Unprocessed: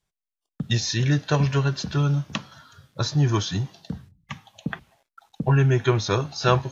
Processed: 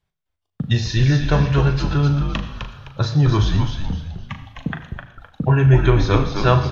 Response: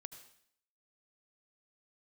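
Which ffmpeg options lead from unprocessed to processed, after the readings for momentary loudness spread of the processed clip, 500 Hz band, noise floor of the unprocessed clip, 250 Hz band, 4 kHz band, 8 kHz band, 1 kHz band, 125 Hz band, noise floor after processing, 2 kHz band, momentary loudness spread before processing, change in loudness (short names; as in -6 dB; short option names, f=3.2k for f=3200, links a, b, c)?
18 LU, +3.5 dB, under -85 dBFS, +5.0 dB, +1.0 dB, n/a, +4.0 dB, +6.0 dB, -79 dBFS, +3.5 dB, 18 LU, +5.0 dB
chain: -filter_complex "[0:a]equalizer=f=82:t=o:w=0.79:g=9.5,asplit=2[a][b];[b]adelay=39,volume=-9.5dB[c];[a][c]amix=inputs=2:normalize=0,asplit=5[d][e][f][g][h];[e]adelay=257,afreqshift=-93,volume=-5.5dB[i];[f]adelay=514,afreqshift=-186,volume=-15.7dB[j];[g]adelay=771,afreqshift=-279,volume=-25.8dB[k];[h]adelay=1028,afreqshift=-372,volume=-36dB[l];[d][i][j][k][l]amix=inputs=5:normalize=0,asplit=2[m][n];[1:a]atrim=start_sample=2205,lowpass=4.3k[o];[n][o]afir=irnorm=-1:irlink=0,volume=10.5dB[p];[m][p]amix=inputs=2:normalize=0,volume=-6dB"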